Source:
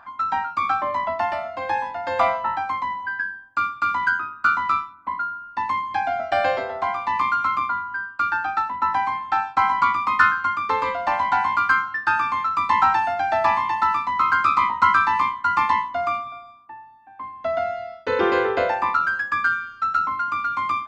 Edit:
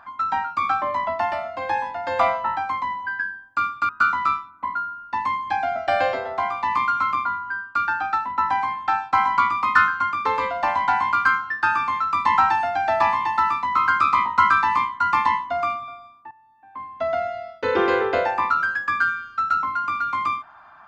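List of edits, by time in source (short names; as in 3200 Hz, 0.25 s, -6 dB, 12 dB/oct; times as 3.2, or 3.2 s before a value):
3.89–4.33 cut
16.75–17.27 fade in, from -15.5 dB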